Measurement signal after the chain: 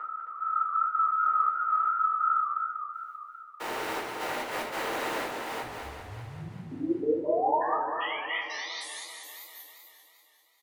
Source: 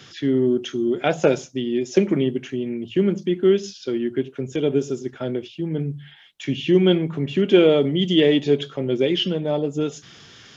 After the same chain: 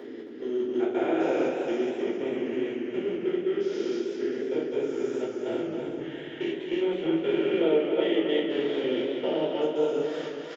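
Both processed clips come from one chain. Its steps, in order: spectrogram pixelated in time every 400 ms; high-pass 130 Hz 6 dB/octave; hum notches 50/100/150/200 Hz; trance gate "xx..xx.x.xxx" 143 bpm -24 dB; compression 2.5:1, threshold -36 dBFS; three-band isolator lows -24 dB, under 340 Hz, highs -13 dB, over 2.6 kHz; delay 268 ms -7.5 dB; simulated room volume 280 m³, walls furnished, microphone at 4.4 m; level rider gain up to 11 dB; modulated delay 196 ms, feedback 68%, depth 142 cents, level -8 dB; trim -7.5 dB

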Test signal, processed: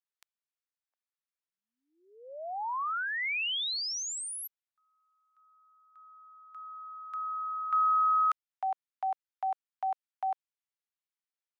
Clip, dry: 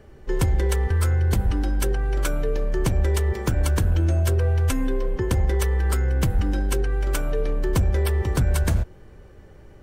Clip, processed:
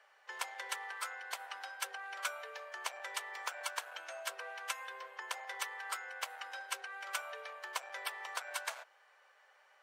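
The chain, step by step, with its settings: Bessel high-pass 1.2 kHz, order 8; dynamic bell 1.7 kHz, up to -3 dB, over -43 dBFS, Q 2.8; low-pass 2.8 kHz 6 dB/octave; trim -1 dB

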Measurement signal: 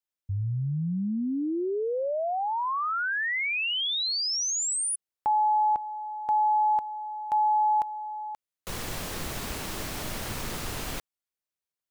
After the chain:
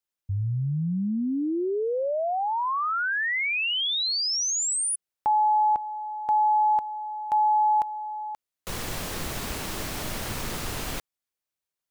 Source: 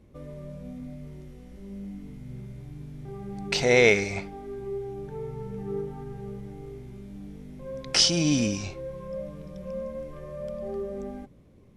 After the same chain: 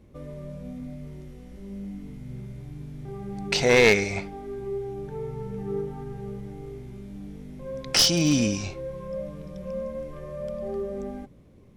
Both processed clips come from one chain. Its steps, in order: one-sided wavefolder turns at -15 dBFS; trim +2 dB

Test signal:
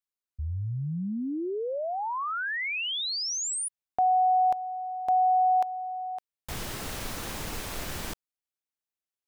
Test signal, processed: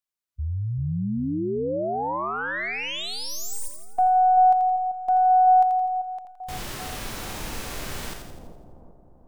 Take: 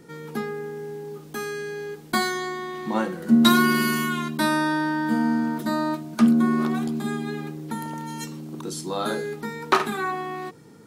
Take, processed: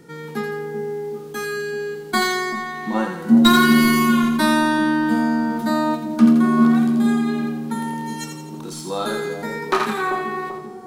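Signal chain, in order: tracing distortion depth 0.031 ms; two-band feedback delay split 800 Hz, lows 388 ms, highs 84 ms, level -6.5 dB; harmonic-percussive split harmonic +8 dB; trim -4 dB

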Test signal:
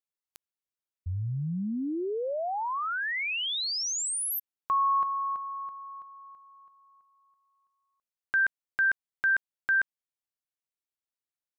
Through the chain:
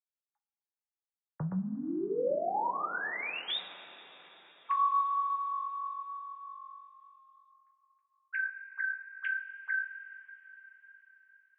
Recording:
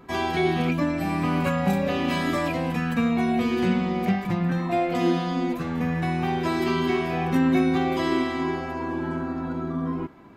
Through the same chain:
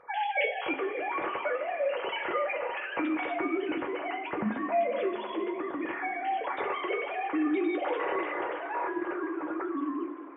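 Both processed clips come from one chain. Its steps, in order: formants replaced by sine waves; compression 2:1, threshold -26 dBFS; two-slope reverb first 0.2 s, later 4.7 s, from -22 dB, DRR 1 dB; trim -5.5 dB

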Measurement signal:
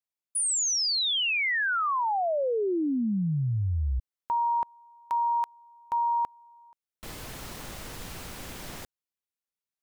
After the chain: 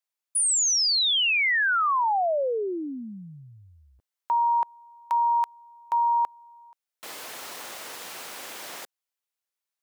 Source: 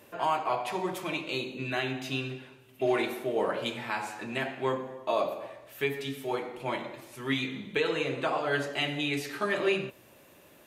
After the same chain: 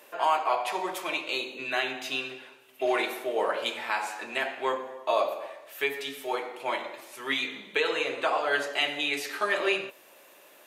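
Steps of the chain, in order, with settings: high-pass 500 Hz 12 dB/octave; trim +4 dB

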